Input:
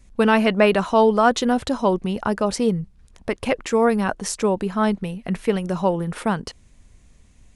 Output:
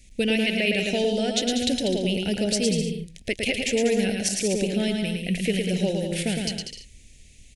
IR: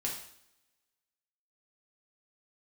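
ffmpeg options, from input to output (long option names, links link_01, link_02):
-af "highshelf=frequency=1800:width_type=q:width=1.5:gain=8.5,alimiter=limit=-10.5dB:level=0:latency=1:release=296,asuperstop=centerf=1100:order=4:qfactor=0.84,aecho=1:1:110|192.5|254.4|300.8|335.6:0.631|0.398|0.251|0.158|0.1,volume=-2dB"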